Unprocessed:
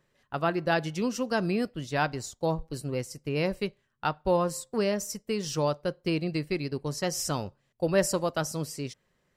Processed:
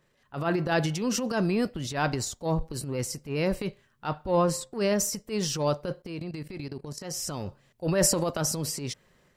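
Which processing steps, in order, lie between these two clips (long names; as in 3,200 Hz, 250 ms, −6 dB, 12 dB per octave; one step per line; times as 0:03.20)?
0:06.02–0:07.46: output level in coarse steps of 18 dB
transient designer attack −11 dB, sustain +7 dB
0:04.25–0:04.72: high-shelf EQ 11,000 Hz → 5,700 Hz −10 dB
level +2.5 dB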